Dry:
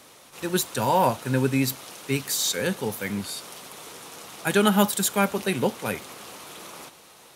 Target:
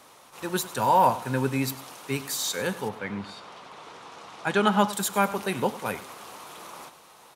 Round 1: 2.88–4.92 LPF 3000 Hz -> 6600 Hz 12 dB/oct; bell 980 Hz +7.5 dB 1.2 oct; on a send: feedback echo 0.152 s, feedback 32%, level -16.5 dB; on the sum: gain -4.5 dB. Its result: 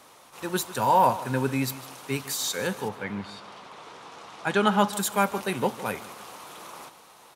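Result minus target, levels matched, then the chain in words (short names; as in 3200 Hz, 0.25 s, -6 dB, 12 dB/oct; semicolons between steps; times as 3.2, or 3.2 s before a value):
echo 53 ms late
2.88–4.92 LPF 3000 Hz -> 6600 Hz 12 dB/oct; bell 980 Hz +7.5 dB 1.2 oct; on a send: feedback echo 99 ms, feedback 32%, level -16.5 dB; on the sum: gain -4.5 dB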